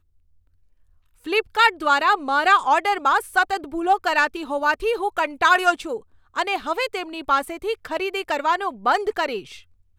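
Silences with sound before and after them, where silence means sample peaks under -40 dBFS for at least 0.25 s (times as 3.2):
6–6.35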